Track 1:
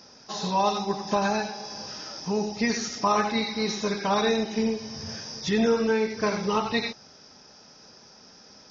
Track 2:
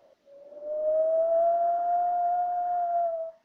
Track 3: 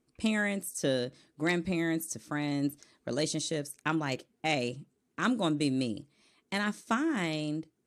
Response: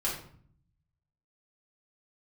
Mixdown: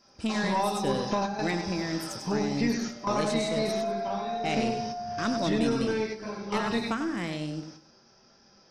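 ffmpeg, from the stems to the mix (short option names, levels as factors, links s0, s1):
-filter_complex "[0:a]acrossover=split=1100|3100[s0][s1][s2];[s0]acompressor=threshold=0.0501:ratio=4[s3];[s1]acompressor=threshold=0.00891:ratio=4[s4];[s2]acompressor=threshold=0.01:ratio=4[s5];[s3][s4][s5]amix=inputs=3:normalize=0,volume=1,asplit=2[s6][s7];[s7]volume=0.237[s8];[1:a]adelay=2400,volume=0.447[s9];[2:a]lowshelf=f=160:g=4.5,volume=0.841,asplit=3[s10][s11][s12];[s10]atrim=end=3.74,asetpts=PTS-STARTPTS,afade=t=out:st=3.736:d=0.004:c=hsin[s13];[s11]atrim=start=3.74:end=4.31,asetpts=PTS-STARTPTS,volume=0[s14];[s12]atrim=start=4.31,asetpts=PTS-STARTPTS,afade=t=in:d=0.004:c=hsin[s15];[s13][s14][s15]concat=n=3:v=0:a=1,asplit=3[s16][s17][s18];[s17]volume=0.376[s19];[s18]apad=whole_len=384029[s20];[s6][s20]sidechaingate=range=0.0224:threshold=0.00178:ratio=16:detection=peak[s21];[3:a]atrim=start_sample=2205[s22];[s8][s22]afir=irnorm=-1:irlink=0[s23];[s19]aecho=0:1:98|196|294|392:1|0.29|0.0841|0.0244[s24];[s21][s9][s16][s23][s24]amix=inputs=5:normalize=0,highshelf=f=5900:g=-4.5,aeval=exprs='(tanh(6.31*val(0)+0.25)-tanh(0.25))/6.31':c=same"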